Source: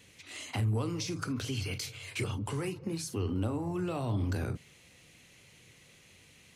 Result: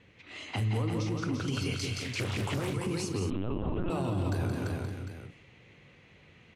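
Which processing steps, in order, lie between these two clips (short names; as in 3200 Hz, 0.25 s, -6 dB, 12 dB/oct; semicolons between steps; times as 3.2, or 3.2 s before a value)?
low-pass opened by the level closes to 2000 Hz, open at -29.5 dBFS; 0.65–1.48 high shelf 2700 Hz -12 dB; tapped delay 0.172/0.216/0.341/0.524/0.566/0.751 s -5/-12.5/-5/-12/-18/-13.5 dB; 3.3–3.9 LPC vocoder at 8 kHz pitch kept; limiter -24.5 dBFS, peak gain reduction 6.5 dB; 2.02–2.74 Doppler distortion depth 0.67 ms; gain +2 dB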